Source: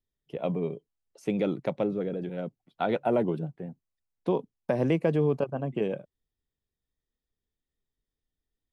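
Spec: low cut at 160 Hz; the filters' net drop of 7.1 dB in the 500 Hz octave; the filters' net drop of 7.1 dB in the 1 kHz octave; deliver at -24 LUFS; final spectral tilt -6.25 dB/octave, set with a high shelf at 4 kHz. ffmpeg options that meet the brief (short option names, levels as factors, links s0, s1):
-af "highpass=160,equalizer=f=500:t=o:g=-7,equalizer=f=1000:t=o:g=-7.5,highshelf=f=4000:g=8,volume=3.35"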